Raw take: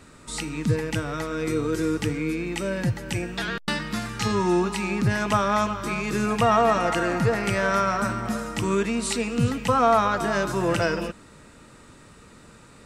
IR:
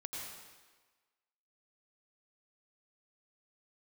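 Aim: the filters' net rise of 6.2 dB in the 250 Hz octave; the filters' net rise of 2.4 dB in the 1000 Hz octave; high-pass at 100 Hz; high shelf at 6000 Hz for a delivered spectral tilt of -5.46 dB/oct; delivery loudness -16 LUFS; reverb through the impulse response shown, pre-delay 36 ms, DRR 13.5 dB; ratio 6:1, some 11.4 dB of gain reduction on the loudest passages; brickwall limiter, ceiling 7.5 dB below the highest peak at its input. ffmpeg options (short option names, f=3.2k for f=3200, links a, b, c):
-filter_complex "[0:a]highpass=100,equalizer=f=250:t=o:g=8.5,equalizer=f=1k:t=o:g=3,highshelf=f=6k:g=-6,acompressor=threshold=-24dB:ratio=6,alimiter=limit=-19.5dB:level=0:latency=1,asplit=2[a][b];[1:a]atrim=start_sample=2205,adelay=36[c];[b][c]afir=irnorm=-1:irlink=0,volume=-13dB[d];[a][d]amix=inputs=2:normalize=0,volume=13dB"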